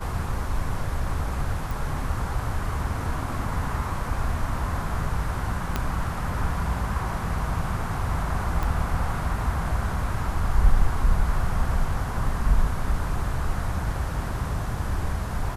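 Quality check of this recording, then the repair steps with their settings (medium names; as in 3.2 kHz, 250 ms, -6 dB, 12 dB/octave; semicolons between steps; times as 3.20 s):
1.71 s: pop
5.76 s: pop -10 dBFS
8.63 s: pop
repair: de-click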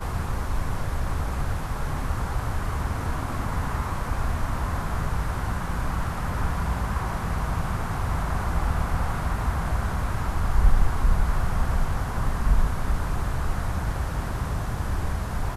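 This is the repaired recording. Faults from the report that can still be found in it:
5.76 s: pop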